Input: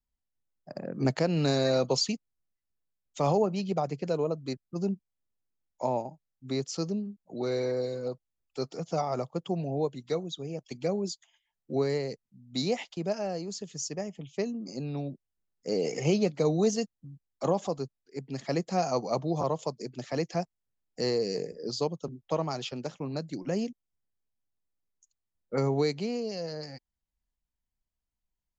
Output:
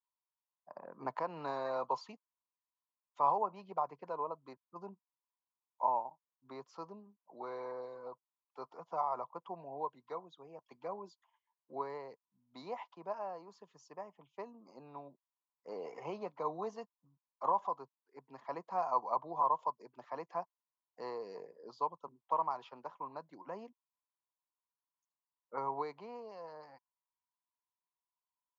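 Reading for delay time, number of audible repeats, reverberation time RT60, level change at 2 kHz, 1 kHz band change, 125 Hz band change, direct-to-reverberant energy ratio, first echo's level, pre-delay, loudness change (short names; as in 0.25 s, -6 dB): none, none, none, -12.5 dB, +1.0 dB, -25.5 dB, none, none, none, -8.5 dB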